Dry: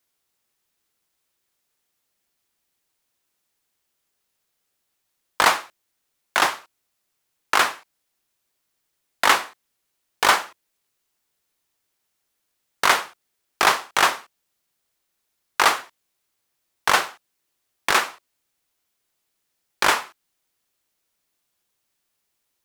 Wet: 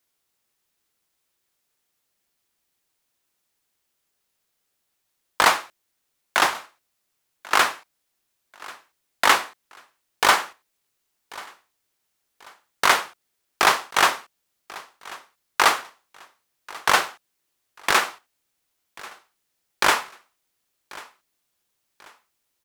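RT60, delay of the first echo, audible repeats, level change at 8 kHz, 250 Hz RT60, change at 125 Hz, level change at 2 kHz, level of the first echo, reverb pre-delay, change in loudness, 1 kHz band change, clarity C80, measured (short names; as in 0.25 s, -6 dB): none, 1.089 s, 2, 0.0 dB, none, 0.0 dB, 0.0 dB, -21.0 dB, none, 0.0 dB, 0.0 dB, none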